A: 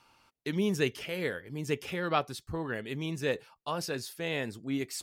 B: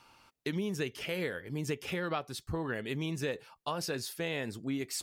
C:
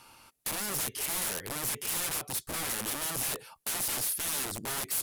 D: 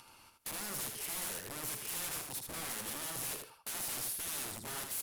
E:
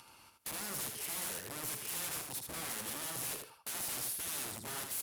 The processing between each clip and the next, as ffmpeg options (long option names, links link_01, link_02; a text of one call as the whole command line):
ffmpeg -i in.wav -af "acompressor=threshold=-34dB:ratio=6,volume=3dB" out.wav
ffmpeg -i in.wav -af "aeval=exprs='(mod(63.1*val(0)+1,2)-1)/63.1':channel_layout=same,equalizer=frequency=11000:width_type=o:width=0.83:gain=13.5,volume=4dB" out.wav
ffmpeg -i in.wav -af "acompressor=mode=upward:threshold=-46dB:ratio=2.5,aecho=1:1:78|156|234:0.562|0.101|0.0182,volume=-8dB" out.wav
ffmpeg -i in.wav -af "highpass=42" out.wav